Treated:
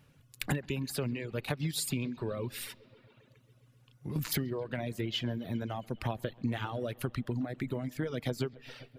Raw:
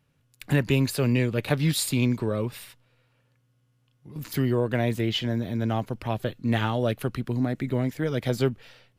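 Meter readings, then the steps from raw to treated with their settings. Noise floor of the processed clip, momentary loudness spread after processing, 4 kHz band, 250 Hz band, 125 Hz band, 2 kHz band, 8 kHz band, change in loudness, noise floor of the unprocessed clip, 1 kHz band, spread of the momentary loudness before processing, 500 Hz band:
−64 dBFS, 5 LU, −6.5 dB, −9.5 dB, −10.0 dB, −8.0 dB, −5.5 dB, −9.5 dB, −68 dBFS, −8.5 dB, 7 LU, −9.5 dB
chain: downward compressor 16 to 1, threshold −36 dBFS, peak gain reduction 19.5 dB
bucket-brigade delay 134 ms, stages 4,096, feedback 71%, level −15 dB
reverb reduction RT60 1 s
level +7 dB

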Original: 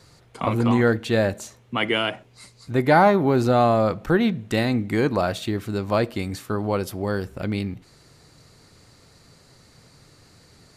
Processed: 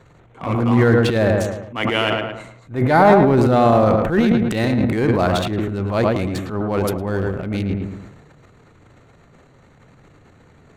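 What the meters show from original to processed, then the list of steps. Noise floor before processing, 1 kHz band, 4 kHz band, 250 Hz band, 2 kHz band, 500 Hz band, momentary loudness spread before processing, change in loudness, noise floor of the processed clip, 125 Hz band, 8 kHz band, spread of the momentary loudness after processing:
−55 dBFS, +4.0 dB, +2.5 dB, +5.0 dB, +3.0 dB, +4.5 dB, 11 LU, +4.5 dB, −51 dBFS, +6.0 dB, +2.0 dB, 11 LU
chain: adaptive Wiener filter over 9 samples
on a send: feedback echo with a low-pass in the loop 110 ms, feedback 41%, low-pass 2,500 Hz, level −7 dB
on the sum: transient designer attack −10 dB, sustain +10 dB
level +3.5 dB

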